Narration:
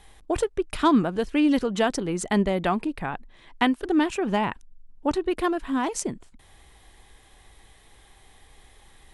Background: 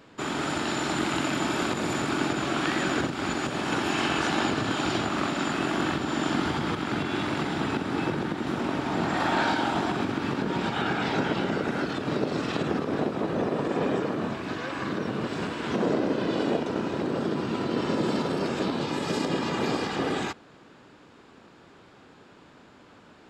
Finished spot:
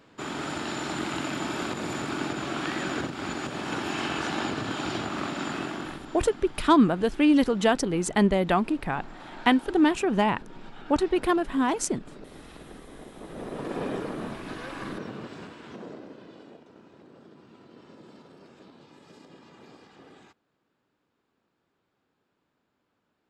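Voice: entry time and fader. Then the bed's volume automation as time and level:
5.85 s, +1.0 dB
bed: 5.57 s -4 dB
6.36 s -19 dB
13.04 s -19 dB
13.69 s -5 dB
14.86 s -5 dB
16.57 s -24 dB

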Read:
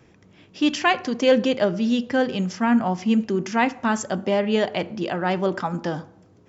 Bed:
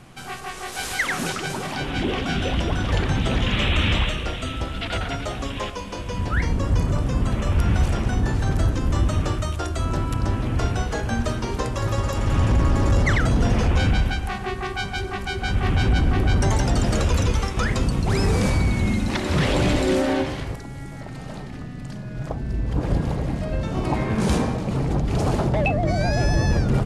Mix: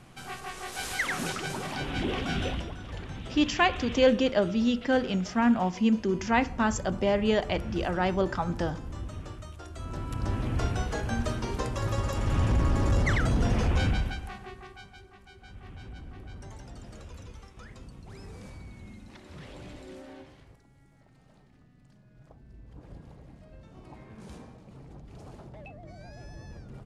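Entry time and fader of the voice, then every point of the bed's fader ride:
2.75 s, -4.0 dB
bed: 2.46 s -6 dB
2.76 s -17.5 dB
9.62 s -17.5 dB
10.37 s -6 dB
13.85 s -6 dB
15.11 s -25 dB

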